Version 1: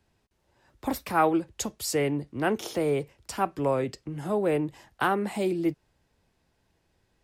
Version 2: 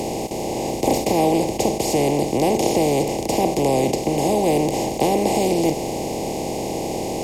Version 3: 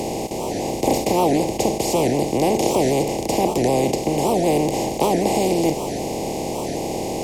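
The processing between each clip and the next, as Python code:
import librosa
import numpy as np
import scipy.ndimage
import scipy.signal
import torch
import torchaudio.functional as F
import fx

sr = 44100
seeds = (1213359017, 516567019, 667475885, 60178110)

y1 = fx.bin_compress(x, sr, power=0.2)
y1 = scipy.signal.sosfilt(scipy.signal.cheby1(2, 1.0, [800.0, 2400.0], 'bandstop', fs=sr, output='sos'), y1)
y1 = fx.low_shelf(y1, sr, hz=140.0, db=10.0)
y2 = fx.record_warp(y1, sr, rpm=78.0, depth_cents=250.0)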